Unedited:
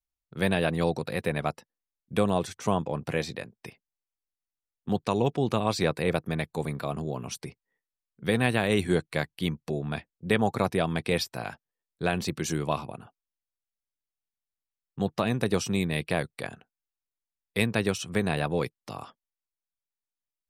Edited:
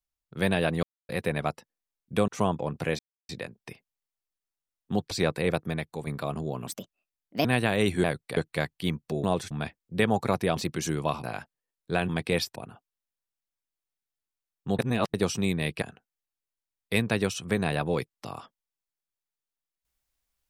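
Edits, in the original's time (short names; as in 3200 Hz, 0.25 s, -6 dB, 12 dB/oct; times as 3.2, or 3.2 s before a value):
0.83–1.09 mute
2.28–2.55 move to 9.82
3.26 insert silence 0.30 s
5.08–5.72 cut
6.24–6.68 fade out, to -7 dB
7.28–8.36 speed 139%
10.88–11.35 swap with 12.2–12.87
15.1–15.45 reverse
16.13–16.46 move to 8.95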